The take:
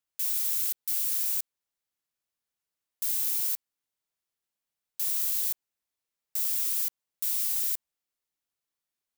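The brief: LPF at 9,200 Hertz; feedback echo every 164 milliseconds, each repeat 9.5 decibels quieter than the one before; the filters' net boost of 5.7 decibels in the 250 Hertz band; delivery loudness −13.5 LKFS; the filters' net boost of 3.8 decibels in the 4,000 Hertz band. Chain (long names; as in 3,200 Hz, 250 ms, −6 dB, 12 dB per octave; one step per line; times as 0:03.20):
low-pass filter 9,200 Hz
parametric band 250 Hz +7.5 dB
parametric band 4,000 Hz +5 dB
repeating echo 164 ms, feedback 33%, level −9.5 dB
level +22 dB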